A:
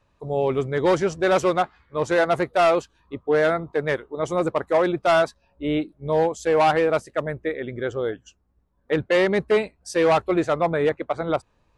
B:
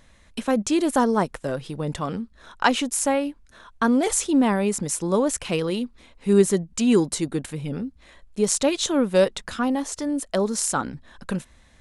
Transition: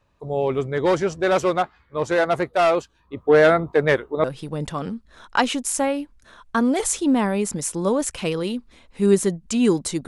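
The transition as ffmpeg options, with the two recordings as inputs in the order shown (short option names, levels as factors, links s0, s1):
-filter_complex "[0:a]asettb=1/sr,asplit=3[s0][s1][s2];[s0]atrim=end=3.174[s3];[s1]atrim=start=3.17:end=4.24,asetpts=PTS-STARTPTS,afade=t=in:d=0.004:c=qsin,afade=t=out:st=1.066:d=0.004:c=qsin,acontrast=48[s4];[s2]atrim=start=4.236[s5];[s3][s4]acrossfade=d=0.004:c1=hsin:c2=qsin[s6];[s6][s5]acrossfade=d=0.004:c1=qsin:c2=hsin,apad=whole_dur=10.07,atrim=end=10.07,atrim=end=4.242[s7];[1:a]atrim=start=1.508:end=7.34[s8];[s7][s8]acrossfade=d=0.004:c1=hsin:c2=hsin"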